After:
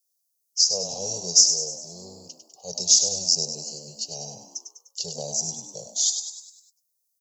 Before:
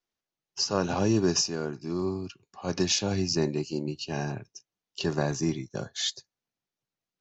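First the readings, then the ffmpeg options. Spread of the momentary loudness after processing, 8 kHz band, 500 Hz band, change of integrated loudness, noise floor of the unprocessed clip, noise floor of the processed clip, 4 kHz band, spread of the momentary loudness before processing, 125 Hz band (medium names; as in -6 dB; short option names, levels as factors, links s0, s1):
21 LU, no reading, -7.0 dB, +7.0 dB, under -85 dBFS, -76 dBFS, +8.0 dB, 12 LU, -12.5 dB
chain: -filter_complex "[0:a]firequalizer=gain_entry='entry(110,0);entry(170,6);entry(290,-23);entry(460,15);entry(800,6);entry(1400,-28);entry(2600,-11);entry(4900,5);entry(7400,11);entry(11000,15)':delay=0.05:min_phase=1,asplit=7[s0][s1][s2][s3][s4][s5][s6];[s1]adelay=100,afreqshift=68,volume=0.398[s7];[s2]adelay=200,afreqshift=136,volume=0.2[s8];[s3]adelay=300,afreqshift=204,volume=0.1[s9];[s4]adelay=400,afreqshift=272,volume=0.0495[s10];[s5]adelay=500,afreqshift=340,volume=0.0248[s11];[s6]adelay=600,afreqshift=408,volume=0.0124[s12];[s0][s7][s8][s9][s10][s11][s12]amix=inputs=7:normalize=0,aexciter=amount=11.2:drive=1:freq=2900,volume=0.168"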